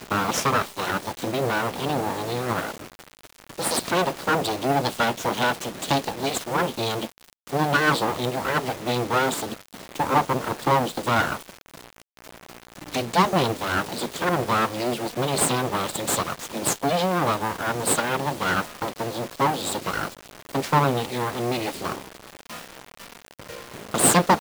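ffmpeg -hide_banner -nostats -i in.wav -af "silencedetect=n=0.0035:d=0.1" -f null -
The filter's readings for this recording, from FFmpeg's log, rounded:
silence_start: 7.33
silence_end: 7.47 | silence_duration: 0.14
silence_start: 12.02
silence_end: 12.17 | silence_duration: 0.16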